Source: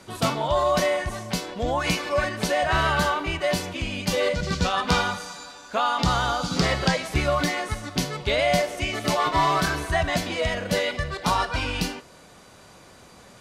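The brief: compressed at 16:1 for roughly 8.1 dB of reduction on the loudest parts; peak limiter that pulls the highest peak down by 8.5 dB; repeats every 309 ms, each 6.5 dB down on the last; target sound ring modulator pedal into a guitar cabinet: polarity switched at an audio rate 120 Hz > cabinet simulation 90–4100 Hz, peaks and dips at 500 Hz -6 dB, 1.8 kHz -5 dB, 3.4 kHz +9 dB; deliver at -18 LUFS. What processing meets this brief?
compression 16:1, threshold -25 dBFS; peak limiter -21 dBFS; feedback delay 309 ms, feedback 47%, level -6.5 dB; polarity switched at an audio rate 120 Hz; cabinet simulation 90–4100 Hz, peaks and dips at 500 Hz -6 dB, 1.8 kHz -5 dB, 3.4 kHz +9 dB; trim +12.5 dB

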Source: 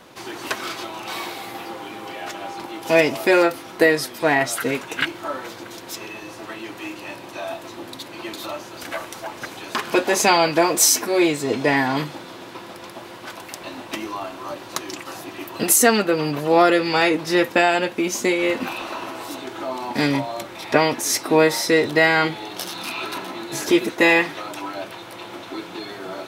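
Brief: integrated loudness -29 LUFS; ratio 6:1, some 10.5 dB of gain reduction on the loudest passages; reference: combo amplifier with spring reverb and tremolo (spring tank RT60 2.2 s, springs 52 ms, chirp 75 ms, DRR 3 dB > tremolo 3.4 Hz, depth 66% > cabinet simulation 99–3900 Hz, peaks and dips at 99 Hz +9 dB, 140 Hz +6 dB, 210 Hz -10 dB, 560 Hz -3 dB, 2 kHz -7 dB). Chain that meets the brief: compression 6:1, threshold -22 dBFS; spring tank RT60 2.2 s, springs 52 ms, chirp 75 ms, DRR 3 dB; tremolo 3.4 Hz, depth 66%; cabinet simulation 99–3900 Hz, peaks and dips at 99 Hz +9 dB, 140 Hz +6 dB, 210 Hz -10 dB, 560 Hz -3 dB, 2 kHz -7 dB; trim +2.5 dB

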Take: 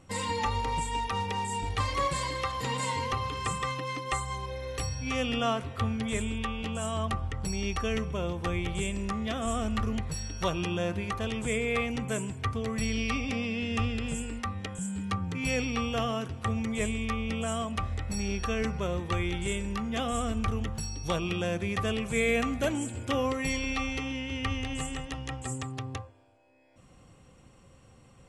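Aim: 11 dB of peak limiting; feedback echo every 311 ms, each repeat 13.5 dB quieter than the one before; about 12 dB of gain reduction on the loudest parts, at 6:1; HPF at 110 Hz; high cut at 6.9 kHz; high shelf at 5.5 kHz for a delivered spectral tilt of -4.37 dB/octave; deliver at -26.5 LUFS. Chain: high-pass 110 Hz; low-pass 6.9 kHz; treble shelf 5.5 kHz +6.5 dB; compression 6:1, threshold -36 dBFS; peak limiter -32 dBFS; feedback delay 311 ms, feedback 21%, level -13.5 dB; trim +14 dB

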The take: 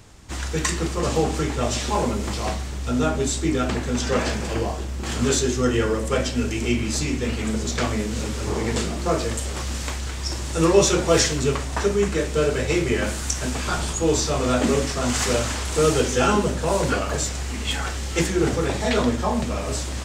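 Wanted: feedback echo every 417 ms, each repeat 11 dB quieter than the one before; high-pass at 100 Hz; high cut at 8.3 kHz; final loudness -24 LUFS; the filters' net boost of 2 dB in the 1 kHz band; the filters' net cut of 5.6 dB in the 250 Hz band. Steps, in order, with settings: high-pass 100 Hz; low-pass 8.3 kHz; peaking EQ 250 Hz -7.5 dB; peaking EQ 1 kHz +3 dB; feedback delay 417 ms, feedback 28%, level -11 dB; trim +0.5 dB

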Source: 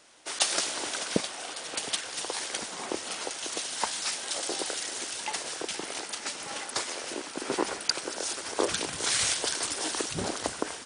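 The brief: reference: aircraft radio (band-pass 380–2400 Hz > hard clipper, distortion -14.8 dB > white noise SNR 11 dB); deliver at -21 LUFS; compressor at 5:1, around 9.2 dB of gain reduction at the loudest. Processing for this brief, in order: compression 5:1, threshold -33 dBFS; band-pass 380–2400 Hz; hard clipper -31.5 dBFS; white noise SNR 11 dB; trim +21 dB

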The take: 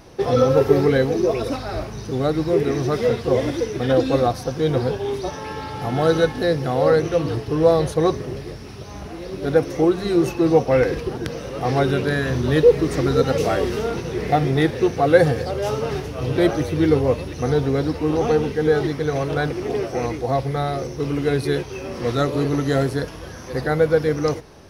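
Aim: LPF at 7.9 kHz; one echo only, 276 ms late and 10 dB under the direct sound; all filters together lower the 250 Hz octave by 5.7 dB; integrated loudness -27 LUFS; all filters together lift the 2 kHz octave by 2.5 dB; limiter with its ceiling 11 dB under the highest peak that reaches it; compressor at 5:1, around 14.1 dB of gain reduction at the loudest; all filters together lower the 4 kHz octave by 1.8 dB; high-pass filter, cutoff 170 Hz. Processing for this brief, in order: high-pass 170 Hz; low-pass 7.9 kHz; peaking EQ 250 Hz -7.5 dB; peaking EQ 2 kHz +4 dB; peaking EQ 4 kHz -3 dB; compression 5:1, threshold -25 dBFS; peak limiter -24.5 dBFS; delay 276 ms -10 dB; trim +6 dB

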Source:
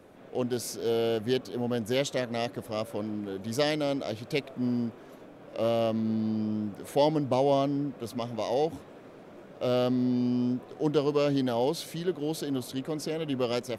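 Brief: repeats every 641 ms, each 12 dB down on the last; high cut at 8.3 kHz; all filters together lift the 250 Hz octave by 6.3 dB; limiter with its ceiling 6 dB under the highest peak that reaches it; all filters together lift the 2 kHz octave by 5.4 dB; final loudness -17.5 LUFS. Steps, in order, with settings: low-pass 8.3 kHz; peaking EQ 250 Hz +7 dB; peaking EQ 2 kHz +6.5 dB; peak limiter -16.5 dBFS; feedback delay 641 ms, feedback 25%, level -12 dB; trim +9 dB

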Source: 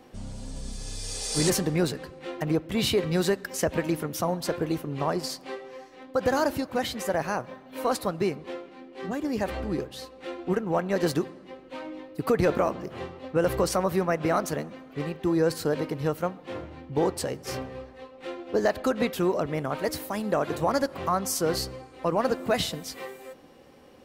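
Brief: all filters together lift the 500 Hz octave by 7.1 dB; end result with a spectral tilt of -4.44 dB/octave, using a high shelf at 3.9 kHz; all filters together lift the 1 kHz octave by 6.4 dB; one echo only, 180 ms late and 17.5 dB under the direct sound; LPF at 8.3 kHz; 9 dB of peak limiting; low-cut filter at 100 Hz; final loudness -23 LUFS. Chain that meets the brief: high-pass 100 Hz; low-pass 8.3 kHz; peaking EQ 500 Hz +7 dB; peaking EQ 1 kHz +5.5 dB; treble shelf 3.9 kHz +5 dB; peak limiter -14 dBFS; delay 180 ms -17.5 dB; trim +3.5 dB

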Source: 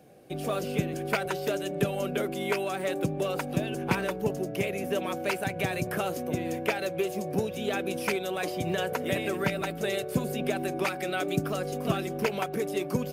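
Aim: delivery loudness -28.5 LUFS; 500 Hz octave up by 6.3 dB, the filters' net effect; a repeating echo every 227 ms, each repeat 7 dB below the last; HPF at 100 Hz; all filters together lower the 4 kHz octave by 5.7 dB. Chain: high-pass 100 Hz; peaking EQ 500 Hz +8 dB; peaking EQ 4 kHz -8 dB; feedback delay 227 ms, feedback 45%, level -7 dB; trim -3 dB

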